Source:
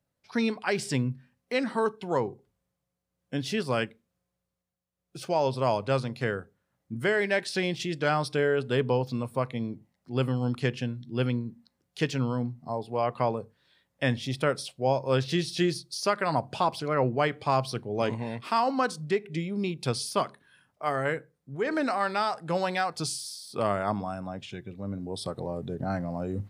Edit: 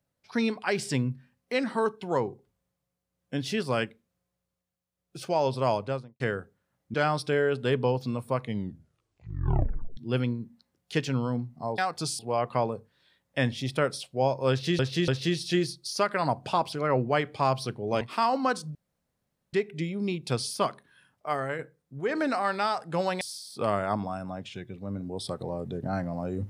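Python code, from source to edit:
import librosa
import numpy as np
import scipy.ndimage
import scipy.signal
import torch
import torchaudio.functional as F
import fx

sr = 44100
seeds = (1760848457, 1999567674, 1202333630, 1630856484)

y = fx.studio_fade_out(x, sr, start_s=5.71, length_s=0.49)
y = fx.edit(y, sr, fx.cut(start_s=6.94, length_s=1.06),
    fx.tape_stop(start_s=9.48, length_s=1.55),
    fx.repeat(start_s=15.15, length_s=0.29, count=3),
    fx.cut(start_s=18.08, length_s=0.27),
    fx.insert_room_tone(at_s=19.09, length_s=0.78),
    fx.fade_out_to(start_s=20.84, length_s=0.31, floor_db=-6.5),
    fx.move(start_s=22.77, length_s=0.41, to_s=12.84), tone=tone)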